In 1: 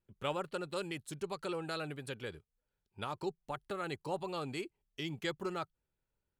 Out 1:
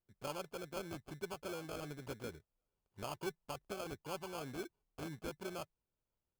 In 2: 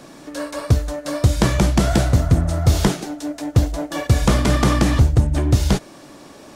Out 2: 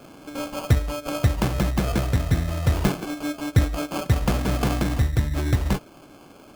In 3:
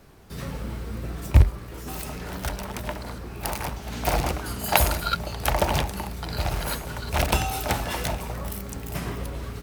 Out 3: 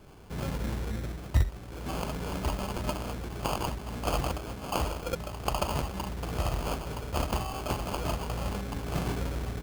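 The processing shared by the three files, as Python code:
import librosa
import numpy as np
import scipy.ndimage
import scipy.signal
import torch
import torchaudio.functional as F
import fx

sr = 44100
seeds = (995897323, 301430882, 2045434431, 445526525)

y = fx.rider(x, sr, range_db=5, speed_s=0.5)
y = fx.sample_hold(y, sr, seeds[0], rate_hz=1900.0, jitter_pct=0)
y = y * 10.0 ** (-5.0 / 20.0)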